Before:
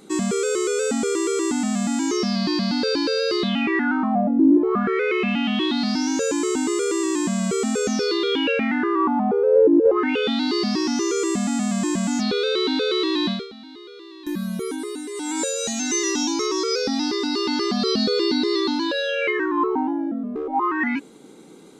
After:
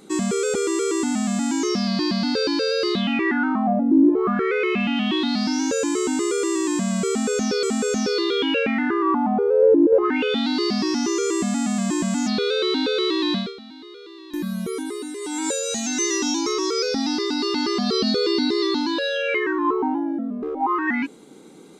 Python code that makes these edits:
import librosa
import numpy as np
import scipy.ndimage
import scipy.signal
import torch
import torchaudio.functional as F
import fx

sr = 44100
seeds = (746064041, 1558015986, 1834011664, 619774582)

y = fx.edit(x, sr, fx.cut(start_s=0.54, length_s=0.48),
    fx.repeat(start_s=7.56, length_s=0.55, count=2), tone=tone)